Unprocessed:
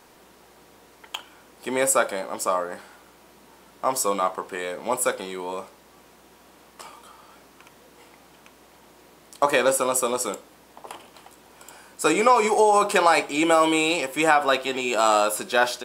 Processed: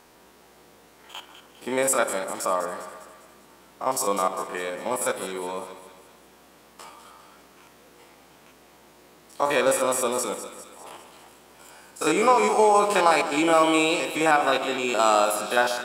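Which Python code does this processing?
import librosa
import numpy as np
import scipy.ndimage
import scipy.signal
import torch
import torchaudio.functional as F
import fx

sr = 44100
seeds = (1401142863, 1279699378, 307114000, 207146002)

y = fx.spec_steps(x, sr, hold_ms=50)
y = fx.echo_split(y, sr, split_hz=1400.0, low_ms=141, high_ms=201, feedback_pct=52, wet_db=-10.5)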